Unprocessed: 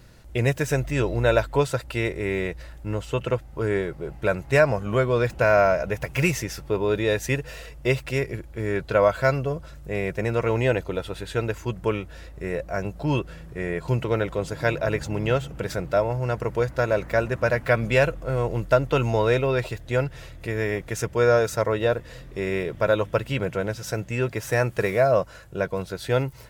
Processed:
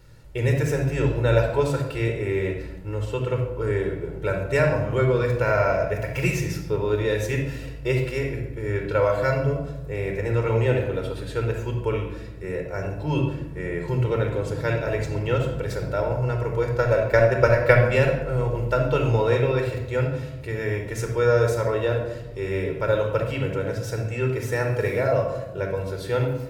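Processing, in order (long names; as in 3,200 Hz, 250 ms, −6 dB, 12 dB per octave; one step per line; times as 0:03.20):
0:16.77–0:17.84: transient designer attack +10 dB, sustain −2 dB
rectangular room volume 4,000 cubic metres, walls furnished, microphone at 4.4 metres
level −5.5 dB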